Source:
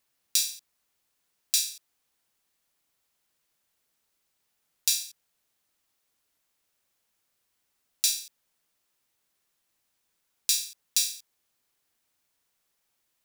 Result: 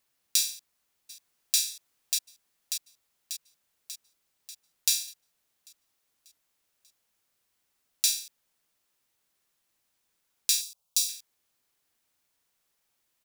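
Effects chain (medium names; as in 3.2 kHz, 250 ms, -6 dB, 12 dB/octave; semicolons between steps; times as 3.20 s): 0.50–1.59 s: echo throw 590 ms, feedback 60%, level -3.5 dB; 10.61–11.09 s: static phaser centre 760 Hz, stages 4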